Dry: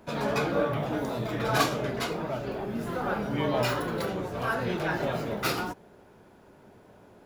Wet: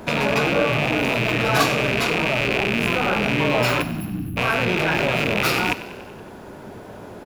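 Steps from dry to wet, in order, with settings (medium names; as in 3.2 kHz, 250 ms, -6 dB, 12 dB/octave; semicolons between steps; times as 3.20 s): rattle on loud lows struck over -43 dBFS, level -19 dBFS; in parallel at -1.5 dB: compressor with a negative ratio -35 dBFS, ratio -0.5; on the sum: spectral selection erased 3.82–4.37 s, 330–10000 Hz; frequency-shifting echo 94 ms, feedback 63%, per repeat +32 Hz, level -16 dB; trim +5.5 dB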